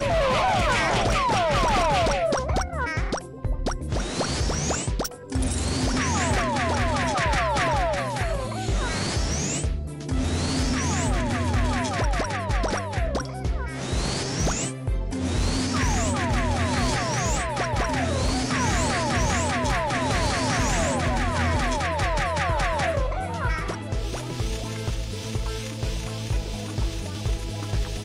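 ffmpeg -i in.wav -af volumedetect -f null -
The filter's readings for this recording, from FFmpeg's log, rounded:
mean_volume: -24.5 dB
max_volume: -16.9 dB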